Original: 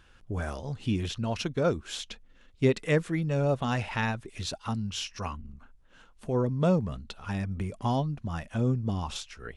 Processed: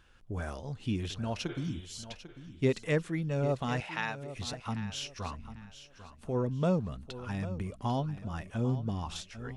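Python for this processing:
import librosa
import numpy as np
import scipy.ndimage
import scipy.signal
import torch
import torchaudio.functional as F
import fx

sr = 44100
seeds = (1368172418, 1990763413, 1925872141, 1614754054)

p1 = fx.spec_repair(x, sr, seeds[0], start_s=1.51, length_s=0.51, low_hz=330.0, high_hz=3900.0, source='both')
p2 = fx.weighting(p1, sr, curve='A', at=(3.8, 4.36))
p3 = p2 + fx.echo_feedback(p2, sr, ms=796, feedback_pct=28, wet_db=-13.5, dry=0)
y = p3 * 10.0 ** (-4.0 / 20.0)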